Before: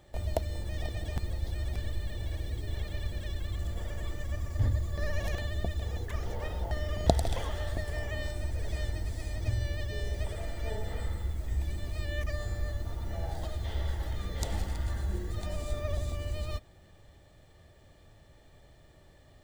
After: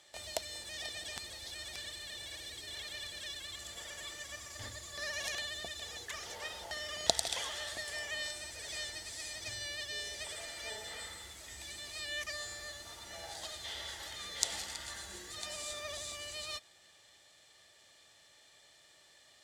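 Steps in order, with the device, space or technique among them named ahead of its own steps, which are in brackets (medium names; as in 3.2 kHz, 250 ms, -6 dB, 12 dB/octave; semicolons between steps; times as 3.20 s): piezo pickup straight into a mixer (low-pass 6.7 kHz 12 dB/octave; differentiator); trim +13.5 dB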